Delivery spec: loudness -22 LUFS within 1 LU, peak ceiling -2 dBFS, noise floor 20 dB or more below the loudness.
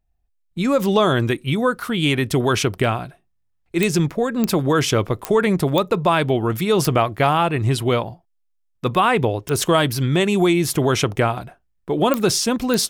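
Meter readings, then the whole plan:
clicks 8; loudness -19.5 LUFS; peak -3.5 dBFS; loudness target -22.0 LUFS
-> de-click; gain -2.5 dB

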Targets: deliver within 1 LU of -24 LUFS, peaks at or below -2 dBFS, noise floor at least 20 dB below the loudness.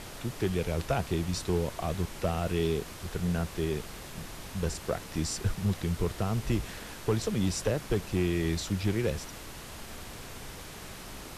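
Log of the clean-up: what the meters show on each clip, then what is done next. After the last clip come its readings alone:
clipped 0.3%; flat tops at -19.0 dBFS; noise floor -44 dBFS; noise floor target -52 dBFS; loudness -32.0 LUFS; peak -19.0 dBFS; loudness target -24.0 LUFS
-> clip repair -19 dBFS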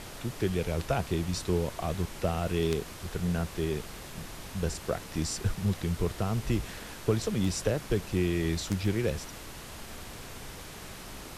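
clipped 0.0%; noise floor -44 dBFS; noise floor target -52 dBFS
-> noise print and reduce 8 dB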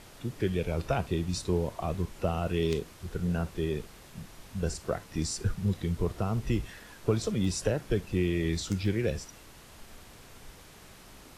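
noise floor -52 dBFS; loudness -31.5 LUFS; peak -11.5 dBFS; loudness target -24.0 LUFS
-> gain +7.5 dB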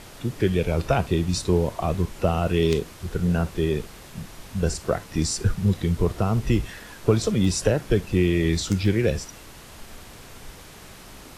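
loudness -24.0 LUFS; peak -4.0 dBFS; noise floor -44 dBFS

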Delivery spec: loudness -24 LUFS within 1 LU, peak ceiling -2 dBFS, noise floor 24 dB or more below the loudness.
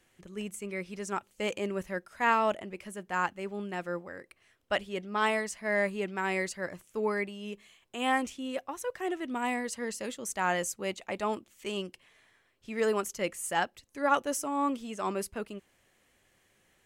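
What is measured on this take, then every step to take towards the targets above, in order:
loudness -32.5 LUFS; peak -13.0 dBFS; loudness target -24.0 LUFS
-> gain +8.5 dB

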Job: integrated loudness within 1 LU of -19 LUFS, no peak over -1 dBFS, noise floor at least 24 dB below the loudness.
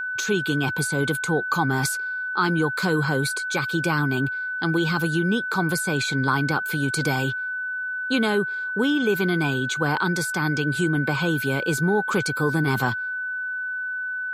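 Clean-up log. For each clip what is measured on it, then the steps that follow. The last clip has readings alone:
steady tone 1500 Hz; tone level -26 dBFS; loudness -23.5 LUFS; peak -8.5 dBFS; loudness target -19.0 LUFS
-> notch 1500 Hz, Q 30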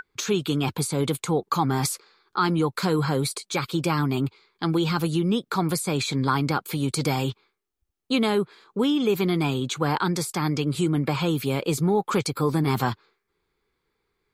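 steady tone none; loudness -25.0 LUFS; peak -10.0 dBFS; loudness target -19.0 LUFS
-> gain +6 dB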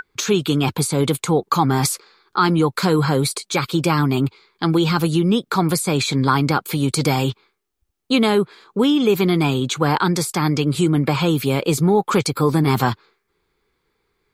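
loudness -19.0 LUFS; peak -4.0 dBFS; noise floor -72 dBFS

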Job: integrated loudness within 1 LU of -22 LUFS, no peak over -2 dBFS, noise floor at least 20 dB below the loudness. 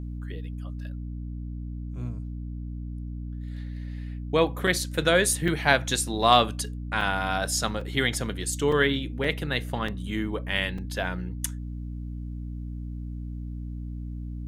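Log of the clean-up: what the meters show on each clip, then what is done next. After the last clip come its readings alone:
dropouts 8; longest dropout 3.9 ms; hum 60 Hz; harmonics up to 300 Hz; hum level -32 dBFS; loudness -28.0 LUFS; peak -3.0 dBFS; loudness target -22.0 LUFS
-> interpolate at 4.67/5.48/7.01/7.81/8.72/9.24/9.88/10.78, 3.9 ms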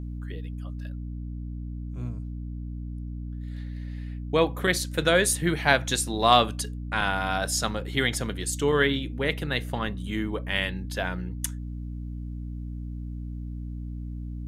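dropouts 0; hum 60 Hz; harmonics up to 300 Hz; hum level -32 dBFS
-> de-hum 60 Hz, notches 5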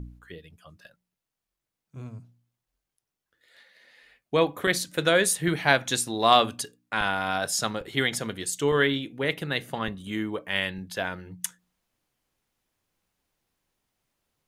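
hum none; loudness -26.0 LUFS; peak -3.5 dBFS; loudness target -22.0 LUFS
-> gain +4 dB; limiter -2 dBFS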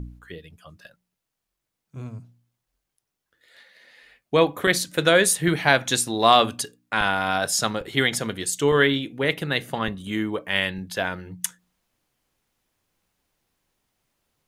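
loudness -22.0 LUFS; peak -2.0 dBFS; noise floor -83 dBFS

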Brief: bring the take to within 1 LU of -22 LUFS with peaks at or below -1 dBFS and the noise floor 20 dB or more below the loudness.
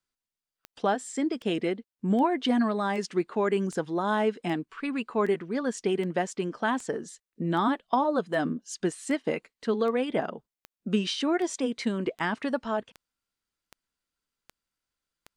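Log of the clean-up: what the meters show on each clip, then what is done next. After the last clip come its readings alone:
clicks 20; loudness -28.5 LUFS; peak -11.0 dBFS; loudness target -22.0 LUFS
-> de-click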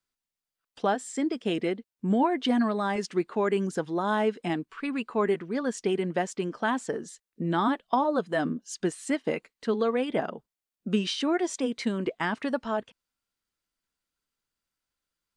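clicks 0; loudness -28.5 LUFS; peak -11.0 dBFS; loudness target -22.0 LUFS
-> gain +6.5 dB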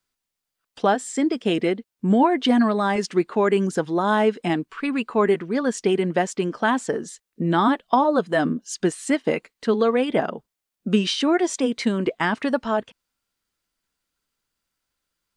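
loudness -22.0 LUFS; peak -4.5 dBFS; noise floor -84 dBFS

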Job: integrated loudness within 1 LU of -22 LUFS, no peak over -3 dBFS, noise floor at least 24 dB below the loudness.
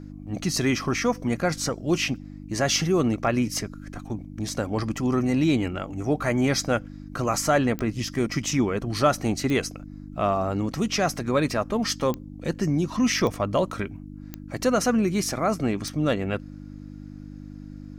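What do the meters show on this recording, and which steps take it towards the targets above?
clicks 6; hum 50 Hz; harmonics up to 300 Hz; hum level -36 dBFS; loudness -25.5 LUFS; peak -9.0 dBFS; loudness target -22.0 LUFS
-> de-click; de-hum 50 Hz, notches 6; gain +3.5 dB

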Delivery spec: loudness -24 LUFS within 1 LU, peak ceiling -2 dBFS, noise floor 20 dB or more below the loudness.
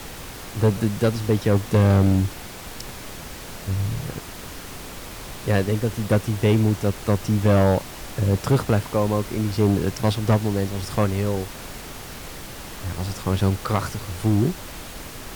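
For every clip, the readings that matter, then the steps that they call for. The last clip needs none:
clipped 1.7%; flat tops at -12.0 dBFS; noise floor -37 dBFS; noise floor target -43 dBFS; loudness -22.5 LUFS; peak -12.0 dBFS; loudness target -24.0 LUFS
-> clip repair -12 dBFS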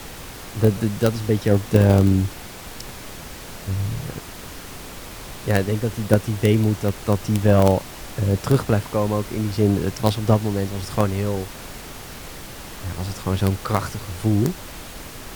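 clipped 0.0%; noise floor -37 dBFS; noise floor target -42 dBFS
-> noise print and reduce 6 dB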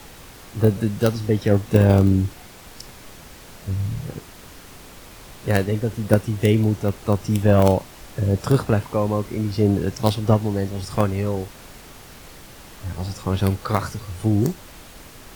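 noise floor -43 dBFS; loudness -21.5 LUFS; peak -3.0 dBFS; loudness target -24.0 LUFS
-> gain -2.5 dB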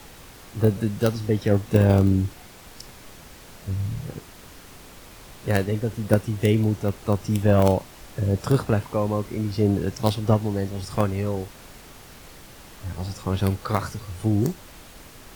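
loudness -24.0 LUFS; peak -5.5 dBFS; noise floor -46 dBFS

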